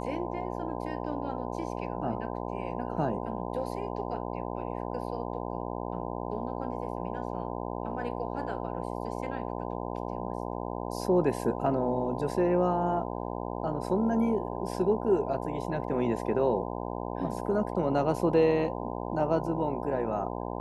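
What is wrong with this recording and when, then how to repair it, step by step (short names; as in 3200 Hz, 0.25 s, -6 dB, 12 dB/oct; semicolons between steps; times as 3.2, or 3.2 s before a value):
buzz 60 Hz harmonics 17 -35 dBFS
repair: de-hum 60 Hz, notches 17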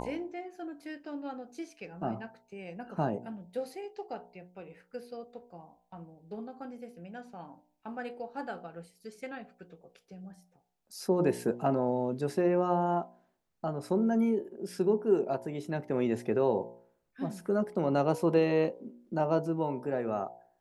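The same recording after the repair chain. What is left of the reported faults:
none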